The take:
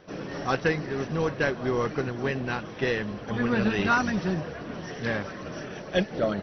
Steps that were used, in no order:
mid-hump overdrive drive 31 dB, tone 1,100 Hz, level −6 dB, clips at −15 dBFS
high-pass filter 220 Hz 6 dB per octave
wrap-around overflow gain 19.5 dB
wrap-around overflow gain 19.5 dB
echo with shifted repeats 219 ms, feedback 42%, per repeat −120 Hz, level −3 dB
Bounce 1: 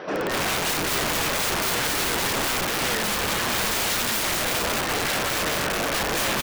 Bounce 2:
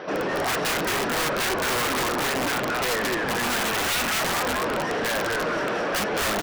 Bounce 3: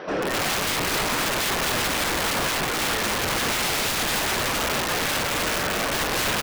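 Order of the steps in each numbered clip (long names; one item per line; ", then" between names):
mid-hump overdrive, then second wrap-around overflow, then high-pass filter, then echo with shifted repeats, then first wrap-around overflow
echo with shifted repeats, then mid-hump overdrive, then second wrap-around overflow, then high-pass filter, then first wrap-around overflow
first wrap-around overflow, then high-pass filter, then mid-hump overdrive, then echo with shifted repeats, then second wrap-around overflow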